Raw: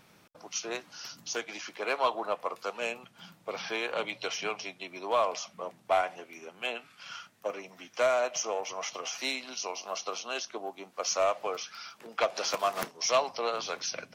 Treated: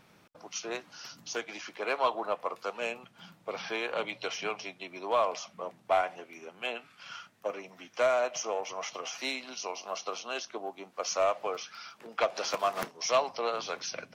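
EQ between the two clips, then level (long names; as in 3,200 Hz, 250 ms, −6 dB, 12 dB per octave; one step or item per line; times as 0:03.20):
high-shelf EQ 4,500 Hz −5.5 dB
0.0 dB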